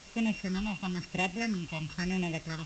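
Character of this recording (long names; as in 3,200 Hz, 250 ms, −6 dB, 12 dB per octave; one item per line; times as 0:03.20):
a buzz of ramps at a fixed pitch in blocks of 16 samples
phaser sweep stages 6, 1 Hz, lowest notch 460–1,400 Hz
a quantiser's noise floor 8 bits, dither triangular
G.722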